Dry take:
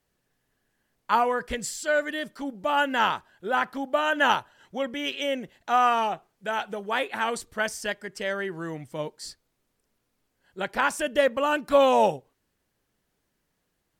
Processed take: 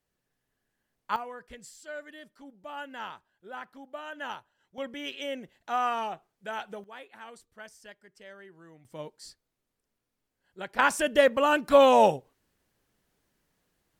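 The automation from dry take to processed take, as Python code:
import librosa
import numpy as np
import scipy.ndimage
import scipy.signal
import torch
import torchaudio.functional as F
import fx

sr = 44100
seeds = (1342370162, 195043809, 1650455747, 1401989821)

y = fx.gain(x, sr, db=fx.steps((0.0, -6.5), (1.16, -16.0), (4.78, -7.0), (6.84, -19.0), (8.85, -8.0), (10.79, 1.0)))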